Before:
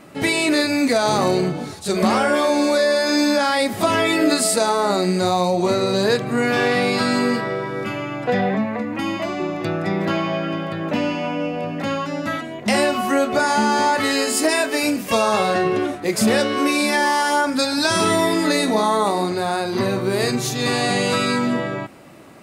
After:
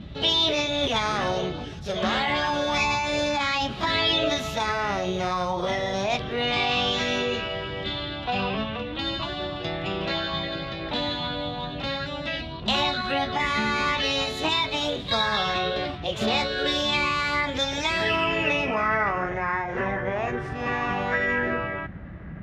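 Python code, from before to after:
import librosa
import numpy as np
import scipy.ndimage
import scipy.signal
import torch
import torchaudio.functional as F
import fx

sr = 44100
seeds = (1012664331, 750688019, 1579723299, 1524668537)

y = fx.dmg_noise_band(x, sr, seeds[0], low_hz=40.0, high_hz=170.0, level_db=-30.0)
y = fx.formant_shift(y, sr, semitones=6)
y = fx.filter_sweep_lowpass(y, sr, from_hz=3700.0, to_hz=1800.0, start_s=17.53, end_s=19.46, q=3.8)
y = F.gain(torch.from_numpy(y), -8.5).numpy()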